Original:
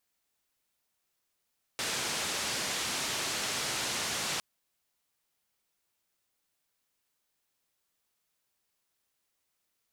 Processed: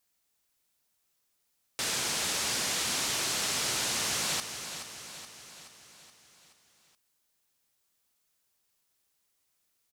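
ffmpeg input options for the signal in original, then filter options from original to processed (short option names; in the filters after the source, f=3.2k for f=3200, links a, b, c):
-f lavfi -i "anoisesrc=c=white:d=2.61:r=44100:seed=1,highpass=f=90,lowpass=f=6900,volume=-23.8dB"
-filter_complex "[0:a]bass=f=250:g=2,treble=f=4k:g=4,asplit=2[a][b];[b]aecho=0:1:425|850|1275|1700|2125|2550:0.316|0.177|0.0992|0.0555|0.0311|0.0174[c];[a][c]amix=inputs=2:normalize=0"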